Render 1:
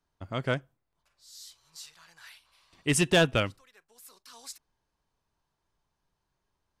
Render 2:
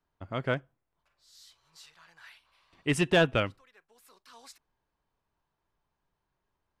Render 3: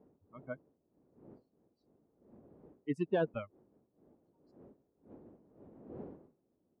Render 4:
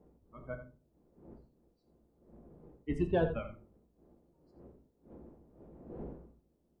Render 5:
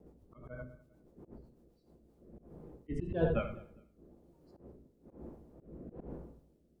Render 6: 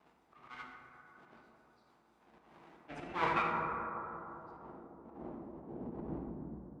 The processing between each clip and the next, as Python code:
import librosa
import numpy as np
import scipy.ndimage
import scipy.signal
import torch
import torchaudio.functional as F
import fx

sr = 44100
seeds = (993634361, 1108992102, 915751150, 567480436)

y1 = fx.bass_treble(x, sr, bass_db=-2, treble_db=-11)
y2 = fx.bin_expand(y1, sr, power=3.0)
y2 = fx.dmg_wind(y2, sr, seeds[0], corner_hz=340.0, level_db=-53.0)
y2 = fx.bandpass_q(y2, sr, hz=370.0, q=0.84)
y2 = F.gain(torch.from_numpy(y2), -2.0).numpy()
y3 = fx.octave_divider(y2, sr, octaves=2, level_db=-4.0)
y3 = y3 + 10.0 ** (-12.0 / 20.0) * np.pad(y3, (int(85 * sr / 1000.0), 0))[:len(y3)]
y3 = fx.room_shoebox(y3, sr, seeds[1], volume_m3=210.0, walls='furnished', distance_m=0.82)
y4 = fx.rotary_switch(y3, sr, hz=8.0, then_hz=1.1, switch_at_s=1.51)
y4 = fx.echo_feedback(y4, sr, ms=203, feedback_pct=25, wet_db=-22.5)
y4 = fx.auto_swell(y4, sr, attack_ms=137.0)
y4 = F.gain(torch.from_numpy(y4), 6.5).numpy()
y5 = fx.lower_of_two(y4, sr, delay_ms=0.81)
y5 = fx.rev_plate(y5, sr, seeds[2], rt60_s=3.0, hf_ratio=0.3, predelay_ms=0, drr_db=0.5)
y5 = fx.filter_sweep_bandpass(y5, sr, from_hz=2800.0, to_hz=260.0, start_s=2.7, end_s=6.37, q=0.74)
y5 = F.gain(torch.from_numpy(y5), 7.0).numpy()